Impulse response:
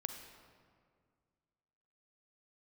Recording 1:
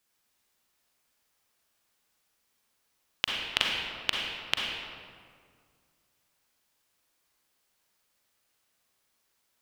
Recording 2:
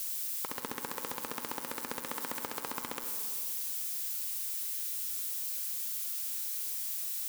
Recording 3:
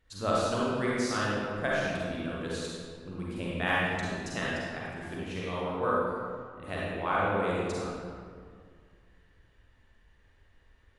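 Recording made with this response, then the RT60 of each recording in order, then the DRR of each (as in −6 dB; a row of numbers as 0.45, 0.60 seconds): 2; 2.0, 2.0, 2.0 seconds; −1.5, 6.0, −6.5 decibels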